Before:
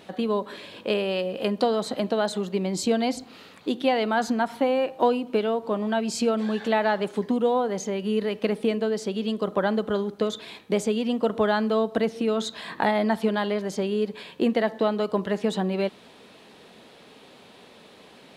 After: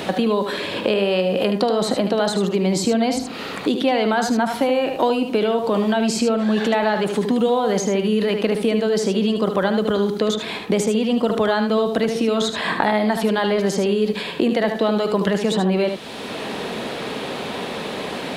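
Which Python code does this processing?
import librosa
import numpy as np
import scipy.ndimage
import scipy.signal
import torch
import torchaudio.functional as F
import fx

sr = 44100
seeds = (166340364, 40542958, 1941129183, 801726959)

p1 = fx.over_compress(x, sr, threshold_db=-29.0, ratio=-0.5)
p2 = x + (p1 * librosa.db_to_amplitude(-3.0))
p3 = p2 + 10.0 ** (-7.5 / 20.0) * np.pad(p2, (int(75 * sr / 1000.0), 0))[:len(p2)]
p4 = fx.band_squash(p3, sr, depth_pct=70)
y = p4 * librosa.db_to_amplitude(2.5)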